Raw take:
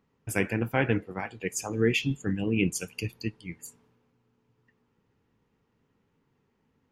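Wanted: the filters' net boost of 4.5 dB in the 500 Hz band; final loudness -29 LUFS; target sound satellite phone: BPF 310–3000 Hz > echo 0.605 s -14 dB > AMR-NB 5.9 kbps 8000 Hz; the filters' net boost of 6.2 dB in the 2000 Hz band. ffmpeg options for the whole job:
-af "highpass=310,lowpass=3k,equalizer=f=500:t=o:g=6,equalizer=f=2k:t=o:g=9,aecho=1:1:605:0.2,volume=-0.5dB" -ar 8000 -c:a libopencore_amrnb -b:a 5900

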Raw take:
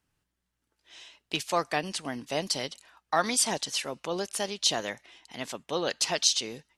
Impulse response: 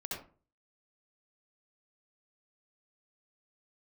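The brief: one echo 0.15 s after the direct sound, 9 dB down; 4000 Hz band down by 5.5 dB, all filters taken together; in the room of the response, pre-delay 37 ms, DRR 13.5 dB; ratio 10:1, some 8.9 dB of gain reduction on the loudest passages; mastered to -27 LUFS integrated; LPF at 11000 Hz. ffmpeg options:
-filter_complex "[0:a]lowpass=11k,equalizer=f=4k:t=o:g=-7,acompressor=threshold=-29dB:ratio=10,aecho=1:1:150:0.355,asplit=2[a][b];[1:a]atrim=start_sample=2205,adelay=37[c];[b][c]afir=irnorm=-1:irlink=0,volume=-14.5dB[d];[a][d]amix=inputs=2:normalize=0,volume=8dB"

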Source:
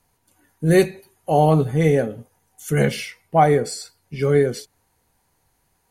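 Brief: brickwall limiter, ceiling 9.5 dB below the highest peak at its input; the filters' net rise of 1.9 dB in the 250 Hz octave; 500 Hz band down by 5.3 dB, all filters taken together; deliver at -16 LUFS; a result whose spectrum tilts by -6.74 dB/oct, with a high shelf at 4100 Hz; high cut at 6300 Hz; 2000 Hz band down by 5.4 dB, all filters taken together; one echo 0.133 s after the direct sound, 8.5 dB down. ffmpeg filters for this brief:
-af "lowpass=6.3k,equalizer=f=250:t=o:g=6.5,equalizer=f=500:t=o:g=-9,equalizer=f=2k:t=o:g=-7,highshelf=f=4.1k:g=5,alimiter=limit=-15dB:level=0:latency=1,aecho=1:1:133:0.376,volume=10dB"

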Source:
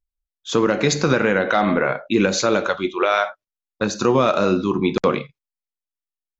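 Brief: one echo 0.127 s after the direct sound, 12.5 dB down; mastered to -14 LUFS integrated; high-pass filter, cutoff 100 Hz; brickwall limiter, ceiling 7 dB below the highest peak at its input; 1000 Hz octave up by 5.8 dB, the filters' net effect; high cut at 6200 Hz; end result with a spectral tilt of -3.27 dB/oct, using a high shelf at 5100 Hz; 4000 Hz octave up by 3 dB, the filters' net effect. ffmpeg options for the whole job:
-af "highpass=100,lowpass=6.2k,equalizer=f=1k:t=o:g=8,equalizer=f=4k:t=o:g=7,highshelf=f=5.1k:g=-8,alimiter=limit=-8dB:level=0:latency=1,aecho=1:1:127:0.237,volume=6dB"

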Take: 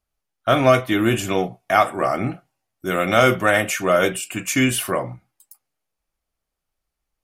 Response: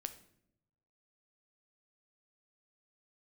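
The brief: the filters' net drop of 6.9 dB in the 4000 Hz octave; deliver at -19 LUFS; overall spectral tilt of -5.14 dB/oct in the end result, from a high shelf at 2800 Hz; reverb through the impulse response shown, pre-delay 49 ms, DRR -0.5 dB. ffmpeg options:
-filter_complex "[0:a]highshelf=f=2.8k:g=-8,equalizer=f=4k:t=o:g=-3.5,asplit=2[a][b];[1:a]atrim=start_sample=2205,adelay=49[c];[b][c]afir=irnorm=-1:irlink=0,volume=3dB[d];[a][d]amix=inputs=2:normalize=0,volume=-1.5dB"

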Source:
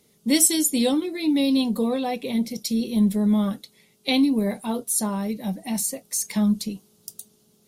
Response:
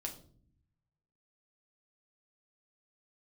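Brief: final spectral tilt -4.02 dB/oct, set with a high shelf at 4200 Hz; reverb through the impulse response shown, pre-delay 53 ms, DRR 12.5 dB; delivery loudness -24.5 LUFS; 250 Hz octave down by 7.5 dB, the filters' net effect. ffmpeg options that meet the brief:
-filter_complex "[0:a]equalizer=f=250:t=o:g=-9,highshelf=f=4.2k:g=-8,asplit=2[a][b];[1:a]atrim=start_sample=2205,adelay=53[c];[b][c]afir=irnorm=-1:irlink=0,volume=-11dB[d];[a][d]amix=inputs=2:normalize=0,volume=4dB"

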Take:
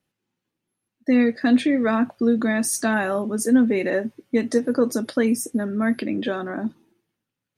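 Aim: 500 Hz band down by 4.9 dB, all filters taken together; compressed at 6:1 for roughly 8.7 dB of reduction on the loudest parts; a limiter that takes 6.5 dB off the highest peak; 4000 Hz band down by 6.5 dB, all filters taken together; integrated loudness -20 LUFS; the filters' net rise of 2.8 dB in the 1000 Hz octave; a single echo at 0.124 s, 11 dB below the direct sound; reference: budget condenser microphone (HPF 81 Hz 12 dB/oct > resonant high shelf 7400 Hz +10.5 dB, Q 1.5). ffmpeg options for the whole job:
-af "equalizer=f=500:t=o:g=-7.5,equalizer=f=1k:t=o:g=7,equalizer=f=4k:t=o:g=-6.5,acompressor=threshold=-22dB:ratio=6,alimiter=limit=-19.5dB:level=0:latency=1,highpass=81,highshelf=f=7.4k:t=q:w=1.5:g=10.5,aecho=1:1:124:0.282,volume=6dB"

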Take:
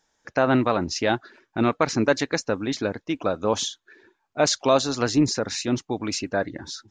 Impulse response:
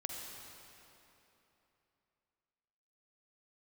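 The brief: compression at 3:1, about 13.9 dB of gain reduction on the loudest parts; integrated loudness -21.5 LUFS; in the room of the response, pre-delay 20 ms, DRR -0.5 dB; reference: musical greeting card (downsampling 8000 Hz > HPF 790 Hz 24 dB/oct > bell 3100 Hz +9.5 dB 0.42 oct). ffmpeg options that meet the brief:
-filter_complex "[0:a]acompressor=threshold=-34dB:ratio=3,asplit=2[a][b];[1:a]atrim=start_sample=2205,adelay=20[c];[b][c]afir=irnorm=-1:irlink=0,volume=0.5dB[d];[a][d]amix=inputs=2:normalize=0,aresample=8000,aresample=44100,highpass=f=790:w=0.5412,highpass=f=790:w=1.3066,equalizer=f=3.1k:t=o:w=0.42:g=9.5,volume=16dB"

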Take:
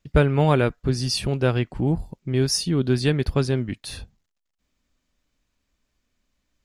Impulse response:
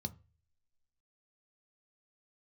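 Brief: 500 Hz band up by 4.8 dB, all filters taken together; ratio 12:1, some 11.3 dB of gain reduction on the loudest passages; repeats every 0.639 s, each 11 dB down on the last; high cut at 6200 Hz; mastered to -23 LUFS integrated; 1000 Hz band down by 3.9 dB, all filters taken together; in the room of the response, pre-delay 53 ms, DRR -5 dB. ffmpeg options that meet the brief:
-filter_complex "[0:a]lowpass=6.2k,equalizer=f=500:t=o:g=8,equalizer=f=1k:t=o:g=-9,acompressor=threshold=-20dB:ratio=12,aecho=1:1:639|1278|1917:0.282|0.0789|0.0221,asplit=2[a][b];[1:a]atrim=start_sample=2205,adelay=53[c];[b][c]afir=irnorm=-1:irlink=0,volume=7dB[d];[a][d]amix=inputs=2:normalize=0,volume=-9.5dB"

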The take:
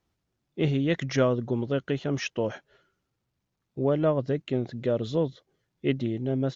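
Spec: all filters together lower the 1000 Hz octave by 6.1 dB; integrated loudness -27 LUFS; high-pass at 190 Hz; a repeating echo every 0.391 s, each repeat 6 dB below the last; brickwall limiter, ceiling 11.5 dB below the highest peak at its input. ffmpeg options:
-af "highpass=190,equalizer=f=1k:t=o:g=-8.5,alimiter=limit=-24dB:level=0:latency=1,aecho=1:1:391|782|1173|1564|1955|2346:0.501|0.251|0.125|0.0626|0.0313|0.0157,volume=7dB"

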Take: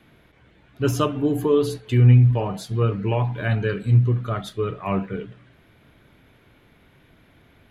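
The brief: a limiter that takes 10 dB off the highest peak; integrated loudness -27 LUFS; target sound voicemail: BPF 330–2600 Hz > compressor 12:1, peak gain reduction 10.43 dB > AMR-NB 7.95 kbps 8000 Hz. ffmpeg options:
-af "alimiter=limit=-16dB:level=0:latency=1,highpass=330,lowpass=2.6k,acompressor=threshold=-31dB:ratio=12,volume=10.5dB" -ar 8000 -c:a libopencore_amrnb -b:a 7950

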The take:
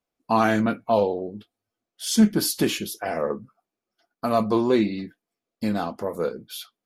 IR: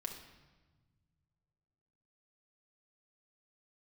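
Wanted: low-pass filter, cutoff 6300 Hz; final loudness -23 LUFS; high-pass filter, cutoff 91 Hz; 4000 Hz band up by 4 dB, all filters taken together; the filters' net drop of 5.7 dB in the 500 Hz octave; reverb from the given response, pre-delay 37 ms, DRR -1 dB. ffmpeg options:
-filter_complex "[0:a]highpass=91,lowpass=6.3k,equalizer=f=500:t=o:g=-8,equalizer=f=4k:t=o:g=6,asplit=2[a][b];[1:a]atrim=start_sample=2205,adelay=37[c];[b][c]afir=irnorm=-1:irlink=0,volume=2.5dB[d];[a][d]amix=inputs=2:normalize=0,volume=-1dB"

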